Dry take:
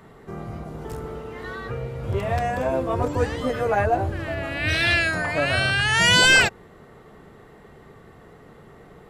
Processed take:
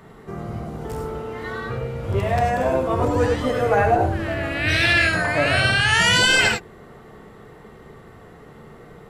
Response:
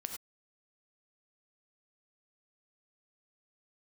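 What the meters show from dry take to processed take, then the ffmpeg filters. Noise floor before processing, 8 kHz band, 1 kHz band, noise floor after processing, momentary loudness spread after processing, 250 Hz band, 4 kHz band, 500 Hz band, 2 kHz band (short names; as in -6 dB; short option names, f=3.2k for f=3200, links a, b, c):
-49 dBFS, 0.0 dB, +3.5 dB, -45 dBFS, 16 LU, +3.5 dB, +0.5 dB, +3.5 dB, +1.0 dB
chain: -filter_complex "[1:a]atrim=start_sample=2205[a];[0:a][a]afir=irnorm=-1:irlink=0,alimiter=level_in=10.5dB:limit=-1dB:release=50:level=0:latency=1,volume=-6dB"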